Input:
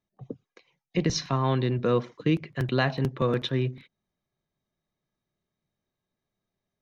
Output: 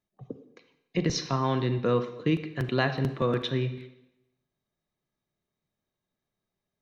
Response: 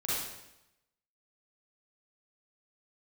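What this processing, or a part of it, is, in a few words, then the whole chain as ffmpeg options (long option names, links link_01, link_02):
filtered reverb send: -filter_complex "[0:a]asplit=2[link_01][link_02];[link_02]highpass=190,lowpass=6300[link_03];[1:a]atrim=start_sample=2205[link_04];[link_03][link_04]afir=irnorm=-1:irlink=0,volume=-15dB[link_05];[link_01][link_05]amix=inputs=2:normalize=0,volume=-2dB"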